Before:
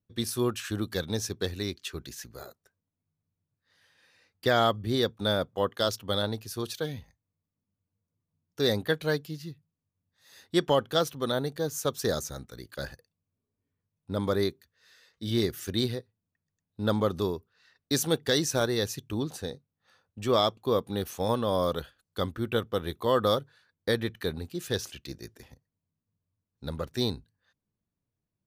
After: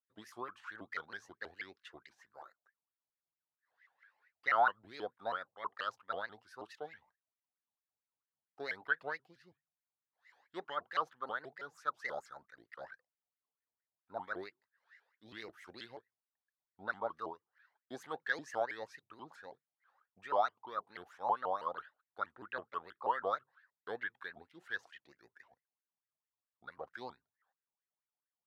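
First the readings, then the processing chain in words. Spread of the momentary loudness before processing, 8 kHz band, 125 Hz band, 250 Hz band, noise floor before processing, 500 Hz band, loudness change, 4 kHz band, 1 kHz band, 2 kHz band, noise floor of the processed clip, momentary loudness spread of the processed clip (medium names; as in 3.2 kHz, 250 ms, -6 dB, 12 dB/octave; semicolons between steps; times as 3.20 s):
15 LU, -28.0 dB, -31.5 dB, -24.0 dB, under -85 dBFS, -15.0 dB, -10.5 dB, -21.5 dB, -3.5 dB, -2.5 dB, under -85 dBFS, 20 LU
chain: wah-wah 4.5 Hz 730–1900 Hz, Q 8.8; vibrato with a chosen wave saw up 6.2 Hz, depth 250 cents; trim +5 dB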